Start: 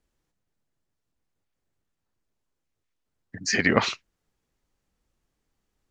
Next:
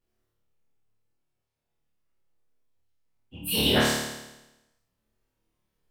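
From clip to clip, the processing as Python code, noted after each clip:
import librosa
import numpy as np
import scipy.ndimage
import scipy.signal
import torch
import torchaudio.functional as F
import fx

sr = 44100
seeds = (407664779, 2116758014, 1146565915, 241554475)

y = fx.partial_stretch(x, sr, pct=124)
y = fx.room_flutter(y, sr, wall_m=4.7, rt60_s=0.99)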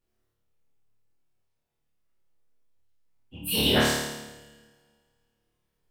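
y = fx.rev_schroeder(x, sr, rt60_s=2.0, comb_ms=28, drr_db=19.5)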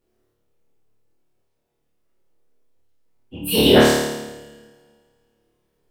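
y = fx.peak_eq(x, sr, hz=400.0, db=9.5, octaves=1.8)
y = y * librosa.db_to_amplitude(4.5)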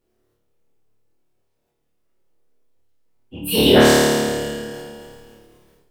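y = fx.sustainer(x, sr, db_per_s=24.0)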